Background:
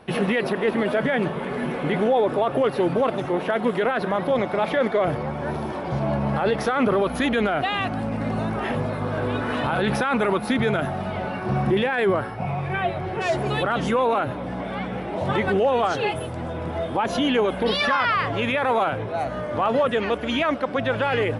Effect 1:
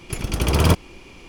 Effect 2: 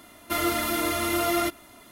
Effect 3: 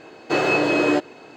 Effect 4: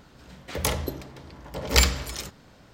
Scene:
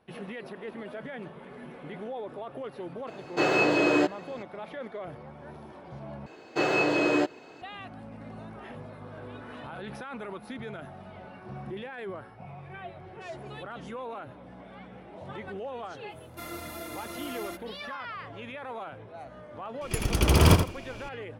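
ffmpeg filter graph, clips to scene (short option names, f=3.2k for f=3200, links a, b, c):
-filter_complex "[3:a]asplit=2[a][b];[0:a]volume=-17.5dB[c];[2:a]bandreject=f=3.1k:w=21[d];[1:a]aecho=1:1:81|162|243:0.398|0.0677|0.0115[e];[c]asplit=2[f][g];[f]atrim=end=6.264[h];[b]atrim=end=1.36,asetpts=PTS-STARTPTS,volume=-5.5dB[i];[g]atrim=start=7.616[j];[a]atrim=end=1.36,asetpts=PTS-STARTPTS,volume=-4dB,afade=t=in:d=0.004:c=hsin,afade=t=out:st=1.356:d=0.004:c=hsin,adelay=3070[k];[d]atrim=end=1.91,asetpts=PTS-STARTPTS,volume=-14.5dB,afade=t=in:d=0.1,afade=t=out:st=1.81:d=0.1,adelay=16070[l];[e]atrim=end=1.28,asetpts=PTS-STARTPTS,volume=-2dB,afade=t=in:d=0.004:c=hsin,afade=t=out:st=1.276:d=0.004:c=hsin,adelay=19810[m];[h][i]acrossfade=d=0.004:c1=hsin:c2=hsin[n];[n][j]acrossfade=d=0.004:c1=hsin:c2=hsin[o];[o][k][l][m]amix=inputs=4:normalize=0"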